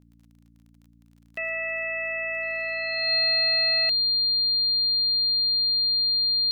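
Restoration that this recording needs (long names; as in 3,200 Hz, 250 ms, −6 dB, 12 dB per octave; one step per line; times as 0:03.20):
click removal
hum removal 57.4 Hz, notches 5
notch filter 4,200 Hz, Q 30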